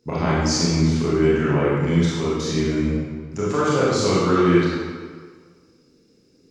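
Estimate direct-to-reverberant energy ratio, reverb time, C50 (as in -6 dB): -8.0 dB, 1.7 s, -3.5 dB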